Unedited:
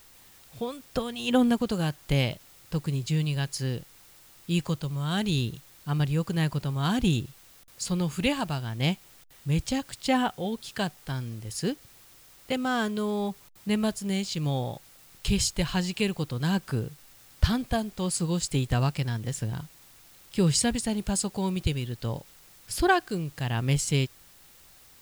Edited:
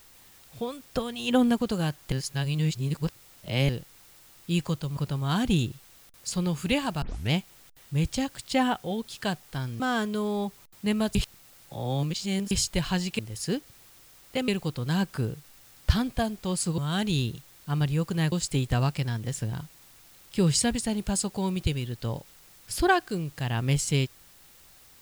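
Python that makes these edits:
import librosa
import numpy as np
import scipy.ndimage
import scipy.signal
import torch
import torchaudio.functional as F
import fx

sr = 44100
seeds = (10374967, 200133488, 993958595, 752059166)

y = fx.edit(x, sr, fx.reverse_span(start_s=2.12, length_s=1.57),
    fx.move(start_s=4.97, length_s=1.54, to_s=18.32),
    fx.tape_start(start_s=8.56, length_s=0.29),
    fx.move(start_s=11.34, length_s=1.29, to_s=16.02),
    fx.reverse_span(start_s=13.98, length_s=1.36), tone=tone)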